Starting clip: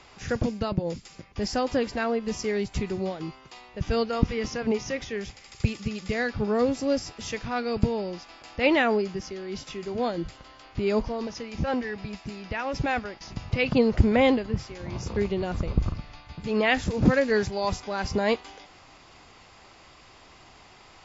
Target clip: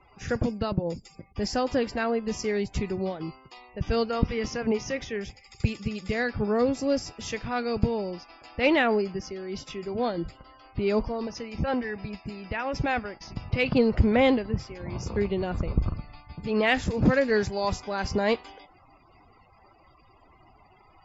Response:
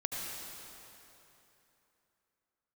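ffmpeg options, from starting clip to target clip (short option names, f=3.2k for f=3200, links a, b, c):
-af "afftdn=nr=33:nf=-49,asoftclip=type=tanh:threshold=-7.5dB"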